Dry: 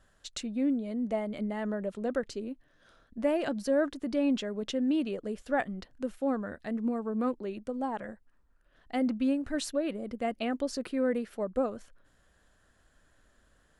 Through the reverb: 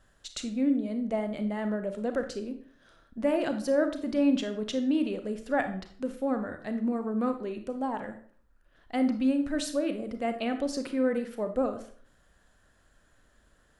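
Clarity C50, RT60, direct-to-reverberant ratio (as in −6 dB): 10.0 dB, 0.50 s, 7.0 dB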